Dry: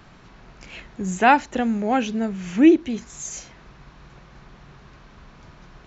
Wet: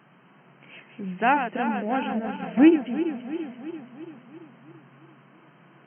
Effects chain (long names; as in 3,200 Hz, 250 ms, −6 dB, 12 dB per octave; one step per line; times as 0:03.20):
feedback delay that plays each chunk backwards 169 ms, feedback 76%, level −8 dB
brick-wall band-pass 120–3,200 Hz
0:02.10–0:02.73: transient designer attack +8 dB, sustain −4 dB
level −6 dB